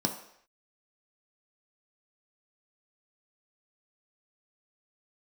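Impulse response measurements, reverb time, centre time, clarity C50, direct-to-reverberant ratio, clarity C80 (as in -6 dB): not exponential, 19 ms, 9.0 dB, 2.5 dB, 11.5 dB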